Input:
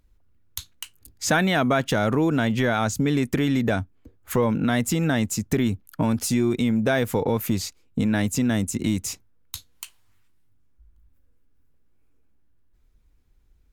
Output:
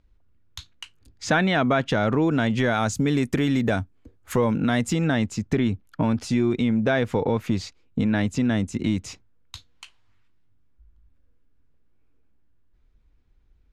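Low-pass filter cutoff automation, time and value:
0:02.11 4,500 Hz
0:02.78 9,400 Hz
0:04.55 9,400 Hz
0:05.33 4,200 Hz

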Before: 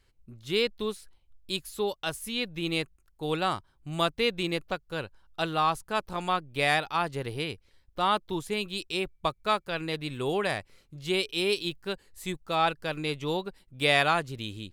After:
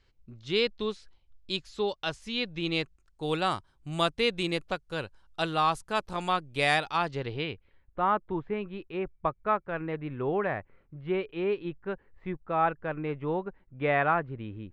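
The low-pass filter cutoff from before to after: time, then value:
low-pass filter 24 dB per octave
0:02.72 6,100 Hz
0:03.34 10,000 Hz
0:06.87 10,000 Hz
0:07.34 4,000 Hz
0:08.06 1,900 Hz

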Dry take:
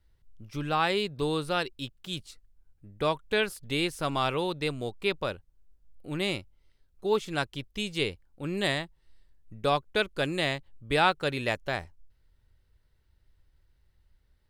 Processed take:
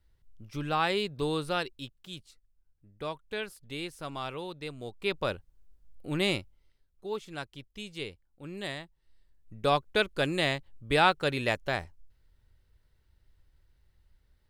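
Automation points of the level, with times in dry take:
0:01.52 −1.5 dB
0:02.28 −9 dB
0:04.71 −9 dB
0:05.33 +2 dB
0:06.37 +2 dB
0:07.07 −9 dB
0:08.78 −9 dB
0:09.73 +0.5 dB

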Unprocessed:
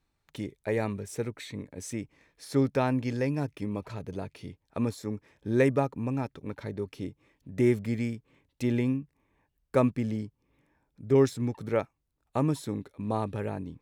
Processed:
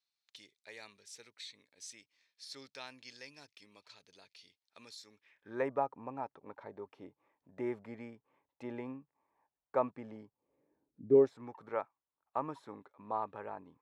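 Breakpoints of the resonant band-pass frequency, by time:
resonant band-pass, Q 2.1
0:05.11 4,500 Hz
0:05.64 870 Hz
0:10.25 870 Hz
0:11.05 250 Hz
0:11.36 1,000 Hz

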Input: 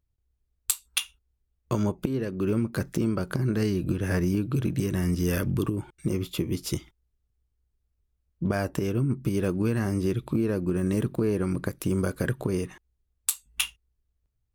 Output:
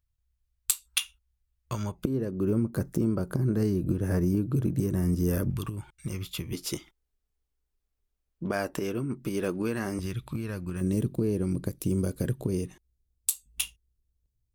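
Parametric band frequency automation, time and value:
parametric band −13 dB 2.1 octaves
330 Hz
from 0:02.05 2,800 Hz
from 0:05.50 340 Hz
from 0:06.53 84 Hz
from 0:09.99 370 Hz
from 0:10.81 1,400 Hz

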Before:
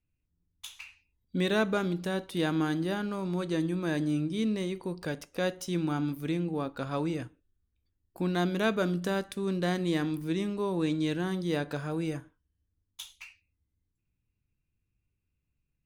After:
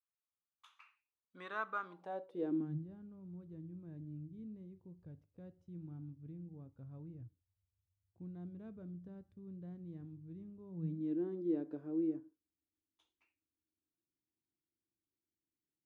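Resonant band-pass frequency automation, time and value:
resonant band-pass, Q 5.3
0:01.83 1,200 Hz
0:02.46 390 Hz
0:02.88 100 Hz
0:10.65 100 Hz
0:11.18 330 Hz

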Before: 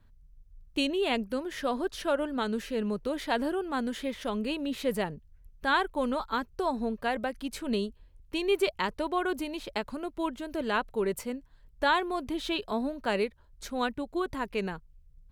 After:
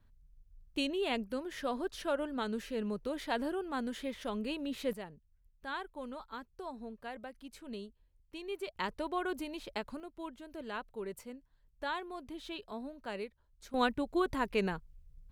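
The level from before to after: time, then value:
−5.5 dB
from 0:04.93 −14 dB
from 0:08.76 −6 dB
from 0:10.00 −12 dB
from 0:13.74 0 dB

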